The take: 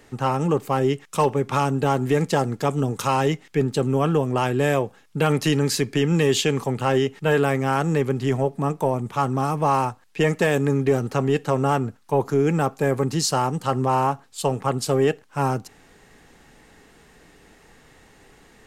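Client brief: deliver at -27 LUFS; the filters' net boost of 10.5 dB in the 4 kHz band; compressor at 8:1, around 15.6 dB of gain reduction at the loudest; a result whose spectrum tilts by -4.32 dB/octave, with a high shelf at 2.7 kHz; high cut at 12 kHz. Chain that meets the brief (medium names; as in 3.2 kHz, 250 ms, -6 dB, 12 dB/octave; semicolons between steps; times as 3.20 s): low-pass 12 kHz; treble shelf 2.7 kHz +7.5 dB; peaking EQ 4 kHz +7.5 dB; compression 8:1, threshold -26 dBFS; trim +3.5 dB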